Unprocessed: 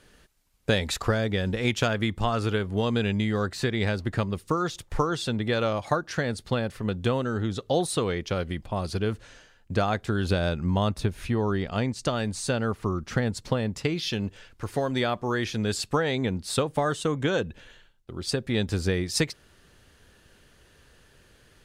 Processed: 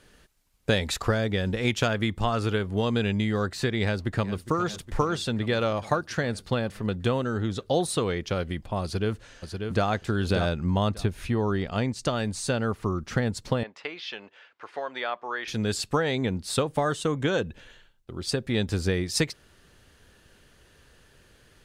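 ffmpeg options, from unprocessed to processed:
-filter_complex "[0:a]asplit=2[s0][s1];[s1]afade=t=in:st=3.83:d=0.01,afade=t=out:st=4.48:d=0.01,aecho=0:1:410|820|1230|1640|2050|2460|2870|3280|3690|4100|4510:0.211349|0.158512|0.118884|0.0891628|0.0668721|0.0501541|0.0376156|0.0282117|0.0211588|0.0158691|0.0119018[s2];[s0][s2]amix=inputs=2:normalize=0,asplit=2[s3][s4];[s4]afade=t=in:st=8.83:d=0.01,afade=t=out:st=9.86:d=0.01,aecho=0:1:590|1180|1770:0.530884|0.0796327|0.0119449[s5];[s3][s5]amix=inputs=2:normalize=0,asettb=1/sr,asplit=3[s6][s7][s8];[s6]atrim=end=13.634[s9];[s7]atrim=start=13.63:end=15.48,asetpts=PTS-STARTPTS,afade=t=in:d=0.004:c=qsin,afade=t=out:st=1.846:d=0.004:c=qsin,highpass=710,lowpass=2800[s10];[s8]atrim=start=15.476[s11];[s9][s10]acrossfade=d=0.004:c1=hsin:c2=qsin[s12];[s12][s11]acrossfade=d=0.004:c1=qsin:c2=hsin"

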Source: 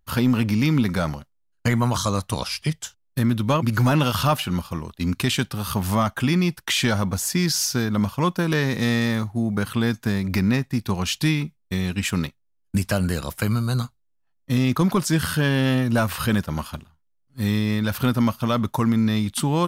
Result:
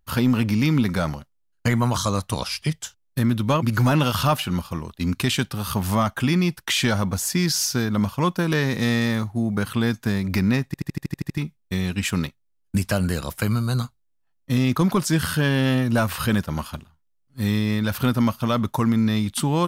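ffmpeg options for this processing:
-filter_complex "[0:a]asplit=10[s0][s1][s2][s3][s4][s5][s6][s7][s8][s9];[s0]atrim=end=10.742[s10];[s1]atrim=start=10.658:end=10.742[s11];[s2]atrim=start=10.658:end=10.742[s12];[s3]atrim=start=10.658:end=10.742[s13];[s4]atrim=start=10.658:end=10.742[s14];[s5]atrim=start=10.658:end=10.742[s15];[s6]atrim=start=10.658:end=10.742[s16];[s7]atrim=start=10.658:end=10.742[s17];[s8]atrim=start=10.658:end=10.742[s18];[s9]atrim=start=11.378[s19];[s10][s11]acrossfade=d=0.004:c1=hsin:c2=hsin[s20];[s20][s12]acrossfade=d=0.004:c1=hsin:c2=hsin[s21];[s21][s13]acrossfade=d=0.004:c1=hsin:c2=hsin[s22];[s22][s14]acrossfade=d=0.004:c1=hsin:c2=hsin[s23];[s23][s15]acrossfade=d=0.004:c1=hsin:c2=hsin[s24];[s24][s16]acrossfade=d=0.004:c1=hsin:c2=hsin[s25];[s25][s17]acrossfade=d=0.004:c1=hsin:c2=hsin[s26];[s26][s18]acrossfade=d=0.004:c1=hsin:c2=hsin[s27];[s27][s19]acrossfade=d=0.004:c1=hsin:c2=hsin"

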